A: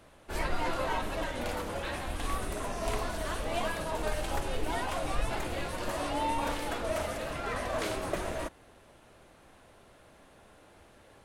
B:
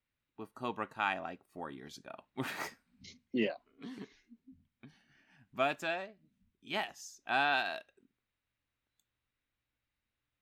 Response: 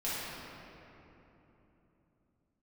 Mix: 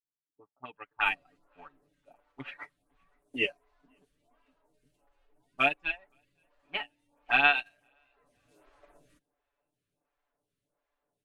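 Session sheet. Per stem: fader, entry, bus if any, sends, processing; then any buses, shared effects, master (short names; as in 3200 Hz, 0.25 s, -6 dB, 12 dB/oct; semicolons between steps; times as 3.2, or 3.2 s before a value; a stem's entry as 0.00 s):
-1.0 dB, 0.70 s, no send, no echo send, limiter -24 dBFS, peak gain reduction 6.5 dB; photocell phaser 1.4 Hz; auto duck -11 dB, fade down 1.70 s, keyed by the second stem
+2.5 dB, 0.00 s, no send, echo send -22 dB, reverb removal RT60 1.2 s; envelope low-pass 380–2700 Hz up, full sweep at -35 dBFS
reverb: off
echo: feedback echo 0.52 s, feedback 36%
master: comb 6.9 ms, depth 96%; upward expander 2.5:1, over -36 dBFS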